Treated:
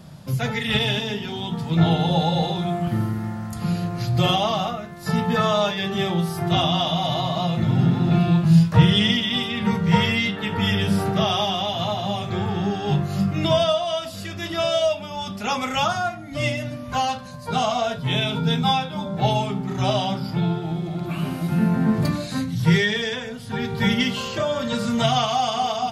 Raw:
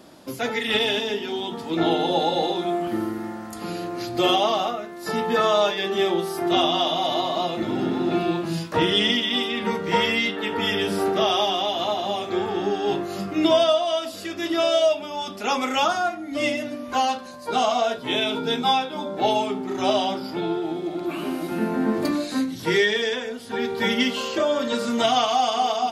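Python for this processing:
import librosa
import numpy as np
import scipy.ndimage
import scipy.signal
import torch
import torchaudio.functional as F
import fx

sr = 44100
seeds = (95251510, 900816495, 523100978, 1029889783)

y = fx.low_shelf_res(x, sr, hz=210.0, db=13.0, q=3.0)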